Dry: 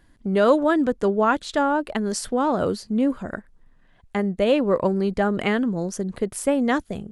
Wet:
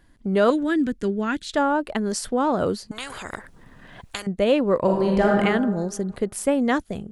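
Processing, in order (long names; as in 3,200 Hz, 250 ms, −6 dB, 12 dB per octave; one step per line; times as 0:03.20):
0:00.50–0:01.54: flat-topped bell 760 Hz −12.5 dB
0:02.91–0:04.27: every bin compressed towards the loudest bin 10 to 1
0:04.80–0:05.37: thrown reverb, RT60 1.4 s, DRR −2 dB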